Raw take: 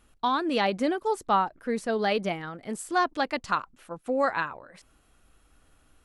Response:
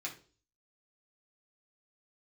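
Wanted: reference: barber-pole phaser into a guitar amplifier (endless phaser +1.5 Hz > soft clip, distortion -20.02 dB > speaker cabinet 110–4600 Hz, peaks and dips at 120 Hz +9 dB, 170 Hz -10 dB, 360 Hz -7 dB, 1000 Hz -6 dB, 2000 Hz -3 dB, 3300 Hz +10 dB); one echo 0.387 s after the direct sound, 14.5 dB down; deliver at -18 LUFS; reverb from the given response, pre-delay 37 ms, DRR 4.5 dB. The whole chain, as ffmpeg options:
-filter_complex "[0:a]aecho=1:1:387:0.188,asplit=2[a][b];[1:a]atrim=start_sample=2205,adelay=37[c];[b][c]afir=irnorm=-1:irlink=0,volume=-5dB[d];[a][d]amix=inputs=2:normalize=0,asplit=2[e][f];[f]afreqshift=1.5[g];[e][g]amix=inputs=2:normalize=1,asoftclip=threshold=-18dB,highpass=110,equalizer=f=120:t=q:w=4:g=9,equalizer=f=170:t=q:w=4:g=-10,equalizer=f=360:t=q:w=4:g=-7,equalizer=f=1k:t=q:w=4:g=-6,equalizer=f=2k:t=q:w=4:g=-3,equalizer=f=3.3k:t=q:w=4:g=10,lowpass=f=4.6k:w=0.5412,lowpass=f=4.6k:w=1.3066,volume=14dB"

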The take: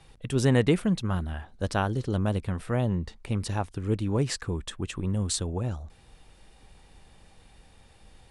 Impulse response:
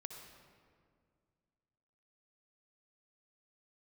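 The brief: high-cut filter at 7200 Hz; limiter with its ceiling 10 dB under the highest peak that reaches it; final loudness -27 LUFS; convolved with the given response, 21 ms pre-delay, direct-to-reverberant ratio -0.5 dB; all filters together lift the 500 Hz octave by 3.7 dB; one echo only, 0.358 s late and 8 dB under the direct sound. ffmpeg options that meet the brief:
-filter_complex "[0:a]lowpass=7.2k,equalizer=f=500:t=o:g=4.5,alimiter=limit=-18dB:level=0:latency=1,aecho=1:1:358:0.398,asplit=2[a][b];[1:a]atrim=start_sample=2205,adelay=21[c];[b][c]afir=irnorm=-1:irlink=0,volume=4.5dB[d];[a][d]amix=inputs=2:normalize=0,volume=-1.5dB"

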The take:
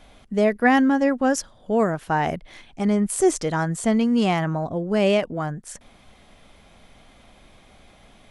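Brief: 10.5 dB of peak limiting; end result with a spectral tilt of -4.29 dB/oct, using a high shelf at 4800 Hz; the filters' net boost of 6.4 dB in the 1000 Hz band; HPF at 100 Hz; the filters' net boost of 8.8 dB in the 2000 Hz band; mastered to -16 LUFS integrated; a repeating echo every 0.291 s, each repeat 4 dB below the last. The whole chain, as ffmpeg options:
-af "highpass=100,equalizer=f=1k:t=o:g=7,equalizer=f=2k:t=o:g=7.5,highshelf=f=4.8k:g=6,alimiter=limit=-10dB:level=0:latency=1,aecho=1:1:291|582|873|1164|1455|1746|2037|2328|2619:0.631|0.398|0.25|0.158|0.0994|0.0626|0.0394|0.0249|0.0157,volume=3.5dB"

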